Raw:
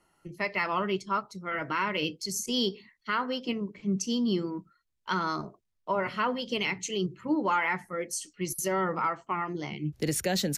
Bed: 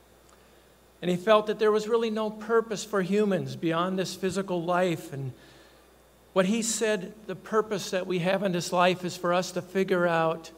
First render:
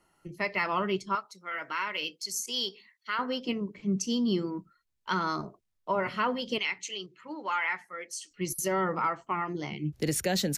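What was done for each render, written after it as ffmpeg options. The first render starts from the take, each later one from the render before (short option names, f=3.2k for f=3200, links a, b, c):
-filter_complex "[0:a]asettb=1/sr,asplit=3[a][b][c];[a]atrim=end=1.154[d];[b]atrim=start=1.15:end=3.19,asetpts=PTS-STARTPTS,afade=t=in:d=0.004:c=qsin,afade=t=out:st=2.036:d=0.004:c=qsin,highpass=f=1.2k:p=1[e];[c]atrim=start=3.186[f];[d][e]acrossfade=d=0.004:c1=hsin:c2=qsin[g];[g][f]acrossfade=d=0.004:c1=qsin:c2=hsin,asettb=1/sr,asplit=3[h][i][j];[h]atrim=end=6.584[k];[i]atrim=start=6.58:end=8.31,asetpts=PTS-STARTPTS,afade=t=in:d=0.004:c=qsin,afade=t=out:st=1.726:d=0.004:c=qsin,bandpass=f=2.7k:t=q:w=0.55[l];[j]atrim=start=8.306[m];[k][l]acrossfade=d=0.004:c1=hsin:c2=qsin[n];[n][m]acrossfade=d=0.004:c1=qsin:c2=hsin"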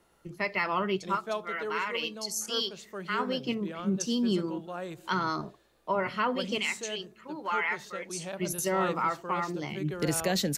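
-filter_complex "[1:a]volume=-13dB[a];[0:a][a]amix=inputs=2:normalize=0"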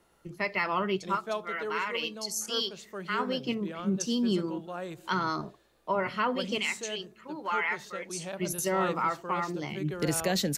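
-af anull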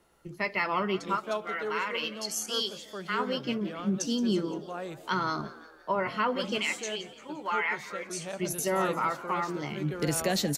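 -filter_complex "[0:a]asplit=2[a][b];[b]adelay=14,volume=-14dB[c];[a][c]amix=inputs=2:normalize=0,asplit=6[d][e][f][g][h][i];[e]adelay=173,afreqshift=84,volume=-17dB[j];[f]adelay=346,afreqshift=168,volume=-22.7dB[k];[g]adelay=519,afreqshift=252,volume=-28.4dB[l];[h]adelay=692,afreqshift=336,volume=-34dB[m];[i]adelay=865,afreqshift=420,volume=-39.7dB[n];[d][j][k][l][m][n]amix=inputs=6:normalize=0"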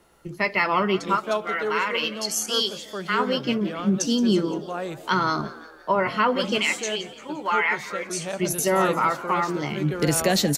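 -af "volume=7dB"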